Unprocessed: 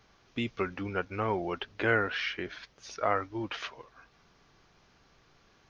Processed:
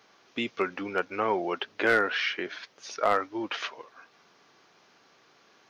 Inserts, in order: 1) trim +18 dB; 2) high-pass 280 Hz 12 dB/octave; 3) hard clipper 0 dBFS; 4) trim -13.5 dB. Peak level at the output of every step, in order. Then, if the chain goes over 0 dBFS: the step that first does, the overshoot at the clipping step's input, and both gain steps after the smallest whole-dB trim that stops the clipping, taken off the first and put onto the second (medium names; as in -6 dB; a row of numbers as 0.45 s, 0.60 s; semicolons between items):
+5.5 dBFS, +5.5 dBFS, 0.0 dBFS, -13.5 dBFS; step 1, 5.5 dB; step 1 +12 dB, step 4 -7.5 dB